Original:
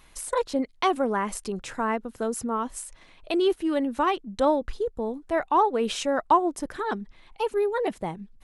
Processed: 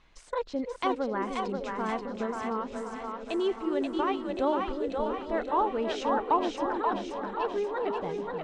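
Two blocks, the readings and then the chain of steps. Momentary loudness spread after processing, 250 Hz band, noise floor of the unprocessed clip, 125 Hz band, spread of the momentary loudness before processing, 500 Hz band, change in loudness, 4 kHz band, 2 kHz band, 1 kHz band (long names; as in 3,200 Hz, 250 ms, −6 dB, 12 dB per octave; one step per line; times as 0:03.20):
7 LU, −3.5 dB, −55 dBFS, can't be measured, 11 LU, −3.5 dB, −4.0 dB, −5.5 dB, −4.0 dB, −4.0 dB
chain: feedback delay that plays each chunk backwards 545 ms, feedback 72%, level −13.5 dB
Bessel low-pass filter 4,400 Hz, order 6
echo with a time of its own for lows and highs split 450 Hz, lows 305 ms, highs 532 ms, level −3.5 dB
level −6 dB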